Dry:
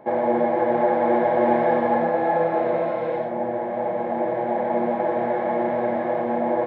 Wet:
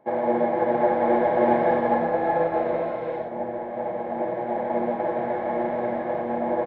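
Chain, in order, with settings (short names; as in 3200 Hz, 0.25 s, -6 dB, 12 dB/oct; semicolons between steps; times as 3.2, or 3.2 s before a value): frequency-shifting echo 0.19 s, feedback 58%, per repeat -48 Hz, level -16.5 dB; upward expander 1.5:1, over -40 dBFS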